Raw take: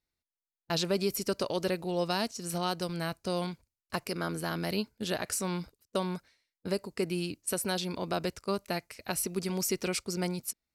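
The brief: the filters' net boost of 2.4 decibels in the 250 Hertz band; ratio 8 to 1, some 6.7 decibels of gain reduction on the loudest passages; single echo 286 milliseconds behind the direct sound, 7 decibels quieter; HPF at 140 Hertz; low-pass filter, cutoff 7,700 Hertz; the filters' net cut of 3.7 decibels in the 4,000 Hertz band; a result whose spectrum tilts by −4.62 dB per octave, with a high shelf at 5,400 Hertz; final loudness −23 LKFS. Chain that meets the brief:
high-pass filter 140 Hz
low-pass filter 7,700 Hz
parametric band 250 Hz +5.5 dB
parametric band 4,000 Hz −6.5 dB
high-shelf EQ 5,400 Hz +5 dB
downward compressor 8 to 1, threshold −30 dBFS
single-tap delay 286 ms −7 dB
level +13 dB

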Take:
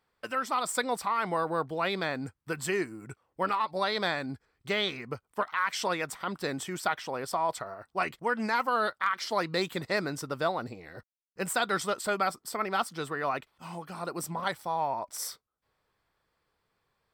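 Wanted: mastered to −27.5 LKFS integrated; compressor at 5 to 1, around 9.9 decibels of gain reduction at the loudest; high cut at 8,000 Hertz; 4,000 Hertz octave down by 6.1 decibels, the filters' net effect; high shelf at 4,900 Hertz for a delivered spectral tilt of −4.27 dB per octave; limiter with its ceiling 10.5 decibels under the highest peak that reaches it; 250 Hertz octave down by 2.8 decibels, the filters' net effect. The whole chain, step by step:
low-pass filter 8,000 Hz
parametric band 250 Hz −4 dB
parametric band 4,000 Hz −4 dB
high-shelf EQ 4,900 Hz −7.5 dB
downward compressor 5 to 1, threshold −36 dBFS
level +16 dB
brickwall limiter −16.5 dBFS

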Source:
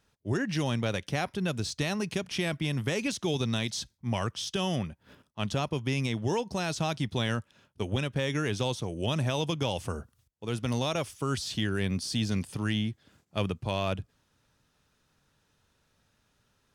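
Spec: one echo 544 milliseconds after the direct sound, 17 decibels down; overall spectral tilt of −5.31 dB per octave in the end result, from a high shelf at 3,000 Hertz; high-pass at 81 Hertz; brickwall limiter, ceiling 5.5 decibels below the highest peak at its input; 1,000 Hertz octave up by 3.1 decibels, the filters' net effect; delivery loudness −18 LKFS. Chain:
high-pass filter 81 Hz
parametric band 1,000 Hz +5 dB
high-shelf EQ 3,000 Hz −7.5 dB
brickwall limiter −19.5 dBFS
single-tap delay 544 ms −17 dB
level +14.5 dB

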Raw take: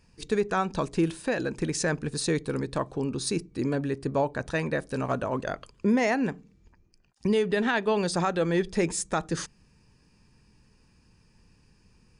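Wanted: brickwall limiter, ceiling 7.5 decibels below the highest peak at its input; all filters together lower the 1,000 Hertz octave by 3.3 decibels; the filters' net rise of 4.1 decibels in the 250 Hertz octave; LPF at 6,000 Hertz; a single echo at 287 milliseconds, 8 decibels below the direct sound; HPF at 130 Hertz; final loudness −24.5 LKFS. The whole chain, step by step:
high-pass filter 130 Hz
low-pass filter 6,000 Hz
parametric band 250 Hz +6 dB
parametric band 1,000 Hz −5 dB
brickwall limiter −18 dBFS
single-tap delay 287 ms −8 dB
level +4 dB

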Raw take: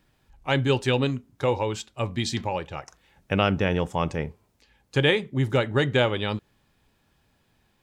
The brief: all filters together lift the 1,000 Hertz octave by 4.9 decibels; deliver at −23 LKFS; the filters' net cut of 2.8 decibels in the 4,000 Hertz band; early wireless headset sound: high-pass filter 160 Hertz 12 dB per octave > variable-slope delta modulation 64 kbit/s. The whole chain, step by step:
high-pass filter 160 Hz 12 dB per octave
parametric band 1,000 Hz +6.5 dB
parametric band 4,000 Hz −4.5 dB
variable-slope delta modulation 64 kbit/s
level +3 dB

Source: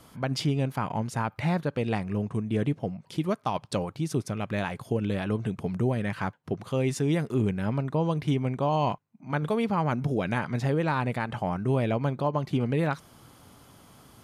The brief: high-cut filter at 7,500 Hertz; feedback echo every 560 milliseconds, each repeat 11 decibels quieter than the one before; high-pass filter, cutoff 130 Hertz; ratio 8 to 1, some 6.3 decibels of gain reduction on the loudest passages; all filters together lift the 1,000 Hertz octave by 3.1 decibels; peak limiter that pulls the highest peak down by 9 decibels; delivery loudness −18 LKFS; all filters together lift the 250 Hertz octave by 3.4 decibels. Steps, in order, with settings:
high-pass filter 130 Hz
low-pass filter 7,500 Hz
parametric band 250 Hz +5 dB
parametric band 1,000 Hz +3.5 dB
downward compressor 8 to 1, threshold −25 dBFS
brickwall limiter −21.5 dBFS
repeating echo 560 ms, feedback 28%, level −11 dB
level +15 dB

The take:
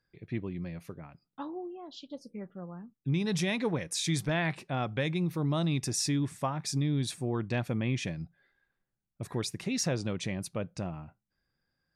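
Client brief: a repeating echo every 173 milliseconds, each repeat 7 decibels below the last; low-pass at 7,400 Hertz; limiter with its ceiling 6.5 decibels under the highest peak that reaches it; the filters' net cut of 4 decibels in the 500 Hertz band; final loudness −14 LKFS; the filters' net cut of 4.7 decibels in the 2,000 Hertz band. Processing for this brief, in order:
low-pass filter 7,400 Hz
parametric band 500 Hz −5 dB
parametric band 2,000 Hz −5.5 dB
brickwall limiter −27 dBFS
repeating echo 173 ms, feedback 45%, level −7 dB
level +22 dB

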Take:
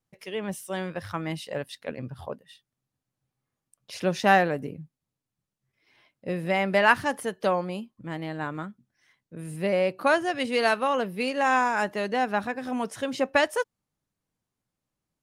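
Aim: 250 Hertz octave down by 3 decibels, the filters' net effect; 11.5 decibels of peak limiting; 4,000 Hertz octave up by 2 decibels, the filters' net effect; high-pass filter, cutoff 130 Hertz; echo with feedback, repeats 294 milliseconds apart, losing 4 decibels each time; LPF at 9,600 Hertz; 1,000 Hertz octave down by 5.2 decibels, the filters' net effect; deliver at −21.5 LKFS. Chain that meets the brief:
high-pass filter 130 Hz
low-pass filter 9,600 Hz
parametric band 250 Hz −3 dB
parametric band 1,000 Hz −7 dB
parametric band 4,000 Hz +3.5 dB
brickwall limiter −19.5 dBFS
repeating echo 294 ms, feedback 63%, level −4 dB
level +9 dB

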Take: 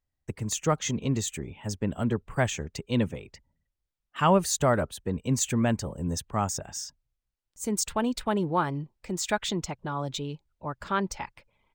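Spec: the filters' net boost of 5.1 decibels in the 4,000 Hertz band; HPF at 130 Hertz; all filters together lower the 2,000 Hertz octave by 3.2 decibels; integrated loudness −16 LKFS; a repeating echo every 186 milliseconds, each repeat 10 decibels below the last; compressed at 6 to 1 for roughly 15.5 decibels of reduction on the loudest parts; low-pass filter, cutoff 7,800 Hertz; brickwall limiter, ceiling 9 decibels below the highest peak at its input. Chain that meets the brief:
high-pass filter 130 Hz
low-pass filter 7,800 Hz
parametric band 2,000 Hz −6.5 dB
parametric band 4,000 Hz +8.5 dB
downward compressor 6 to 1, threshold −35 dBFS
brickwall limiter −30.5 dBFS
repeating echo 186 ms, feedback 32%, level −10 dB
level +25 dB

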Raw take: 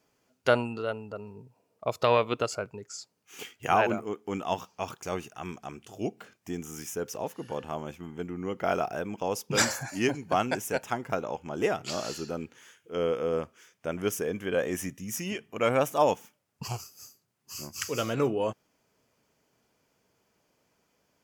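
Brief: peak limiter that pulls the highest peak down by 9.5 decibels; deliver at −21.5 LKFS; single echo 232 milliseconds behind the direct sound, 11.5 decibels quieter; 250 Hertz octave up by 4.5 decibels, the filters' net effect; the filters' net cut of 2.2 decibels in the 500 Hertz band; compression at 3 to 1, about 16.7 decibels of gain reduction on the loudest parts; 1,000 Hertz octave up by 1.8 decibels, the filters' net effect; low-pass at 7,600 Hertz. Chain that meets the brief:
low-pass filter 7,600 Hz
parametric band 250 Hz +7 dB
parametric band 500 Hz −5.5 dB
parametric band 1,000 Hz +4 dB
downward compressor 3 to 1, threshold −41 dBFS
brickwall limiter −31 dBFS
single-tap delay 232 ms −11.5 dB
level +22.5 dB

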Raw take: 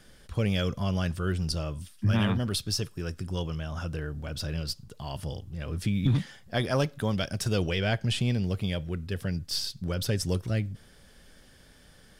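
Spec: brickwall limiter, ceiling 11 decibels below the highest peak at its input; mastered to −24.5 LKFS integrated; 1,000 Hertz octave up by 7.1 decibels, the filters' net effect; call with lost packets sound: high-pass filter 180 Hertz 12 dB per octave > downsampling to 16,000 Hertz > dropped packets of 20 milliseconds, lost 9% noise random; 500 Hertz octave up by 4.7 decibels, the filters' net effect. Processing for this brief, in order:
parametric band 500 Hz +3.5 dB
parametric band 1,000 Hz +8.5 dB
brickwall limiter −20.5 dBFS
high-pass filter 180 Hz 12 dB per octave
downsampling to 16,000 Hz
dropped packets of 20 ms, lost 9% noise random
level +9.5 dB

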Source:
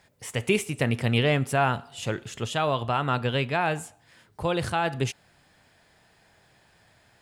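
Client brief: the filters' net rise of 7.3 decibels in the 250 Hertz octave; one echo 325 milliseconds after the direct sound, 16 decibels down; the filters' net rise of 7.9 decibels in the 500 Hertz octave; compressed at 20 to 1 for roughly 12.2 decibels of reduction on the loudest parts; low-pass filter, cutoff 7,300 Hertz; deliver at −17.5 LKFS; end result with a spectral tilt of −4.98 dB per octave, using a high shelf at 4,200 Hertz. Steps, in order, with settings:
low-pass filter 7,300 Hz
parametric band 250 Hz +7 dB
parametric band 500 Hz +8 dB
high-shelf EQ 4,200 Hz +4.5 dB
downward compressor 20 to 1, threshold −23 dBFS
single-tap delay 325 ms −16 dB
level +12 dB

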